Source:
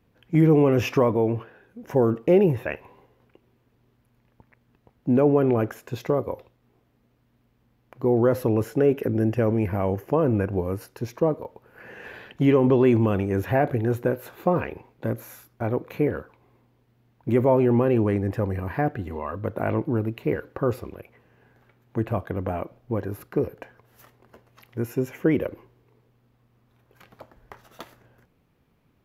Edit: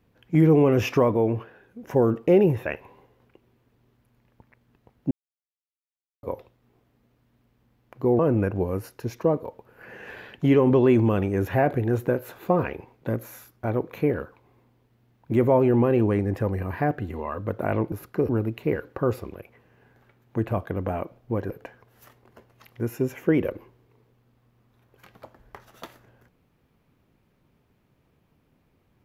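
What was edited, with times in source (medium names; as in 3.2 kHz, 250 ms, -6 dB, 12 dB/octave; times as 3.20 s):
5.11–6.23 s: mute
8.19–10.16 s: delete
23.10–23.47 s: move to 19.89 s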